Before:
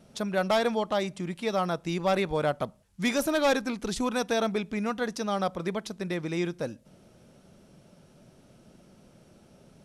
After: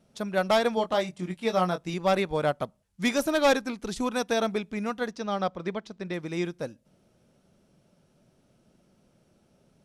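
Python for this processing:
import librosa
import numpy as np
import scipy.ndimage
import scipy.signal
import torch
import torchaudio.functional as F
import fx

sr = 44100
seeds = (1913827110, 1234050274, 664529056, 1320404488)

y = fx.doubler(x, sr, ms=22.0, db=-6, at=(0.75, 1.94))
y = fx.lowpass(y, sr, hz=5500.0, slope=12, at=(5.1, 6.14))
y = fx.upward_expand(y, sr, threshold_db=-43.0, expansion=1.5)
y = y * librosa.db_to_amplitude(3.0)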